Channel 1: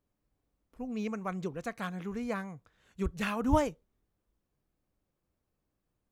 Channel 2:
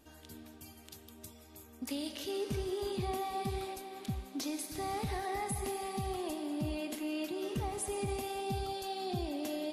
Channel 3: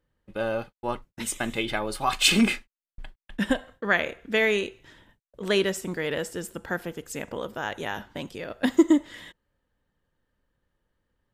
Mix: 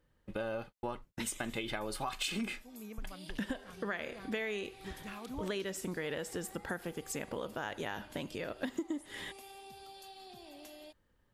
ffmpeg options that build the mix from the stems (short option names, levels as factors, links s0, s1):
-filter_complex "[0:a]adelay=1850,volume=0.237[s0];[1:a]highpass=f=840:p=1,acompressor=threshold=0.00355:ratio=6,adelay=1200,volume=1[s1];[2:a]acompressor=threshold=0.0447:ratio=3,volume=1.33[s2];[s0][s1][s2]amix=inputs=3:normalize=0,acompressor=threshold=0.0112:ratio=2.5"